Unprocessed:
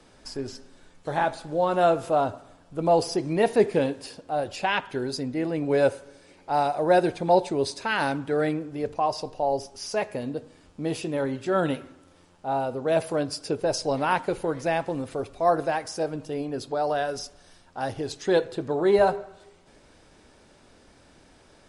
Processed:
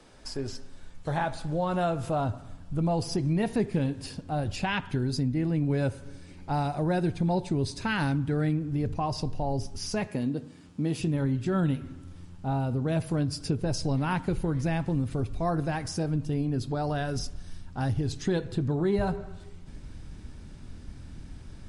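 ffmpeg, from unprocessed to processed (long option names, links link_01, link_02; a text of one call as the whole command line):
ffmpeg -i in.wav -filter_complex "[0:a]asettb=1/sr,asplit=3[link_01][link_02][link_03];[link_01]atrim=end=10.074[link_04];[link_02]atrim=start=10.07:end=11,asetpts=PTS-STARTPTS,afade=type=in:duration=0.004:curve=qsin,afade=type=out:start_time=0.926:duration=0.004:curve=qsin,highpass=200[link_05];[link_03]atrim=start=10.996[link_06];[link_04][link_05]acrossfade=duration=0.004:curve1=hsin:curve2=qsin[link_07];[link_07][link_06]acrossfade=duration=0.004:curve1=qsin:curve2=hsin,asubboost=boost=11:cutoff=160,acompressor=threshold=-26dB:ratio=2.5" out.wav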